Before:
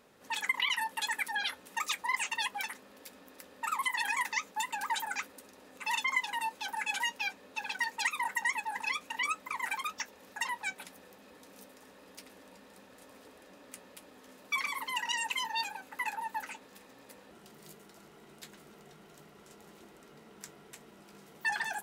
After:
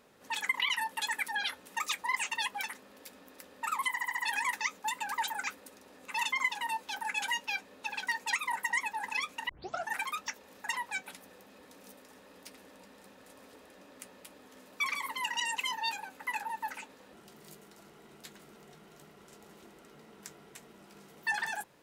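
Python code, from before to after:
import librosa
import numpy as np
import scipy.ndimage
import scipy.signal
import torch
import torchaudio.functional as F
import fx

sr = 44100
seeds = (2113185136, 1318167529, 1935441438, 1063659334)

y = fx.edit(x, sr, fx.stutter(start_s=3.9, slice_s=0.07, count=5),
    fx.tape_start(start_s=9.21, length_s=0.46),
    fx.cut(start_s=16.72, length_s=0.46), tone=tone)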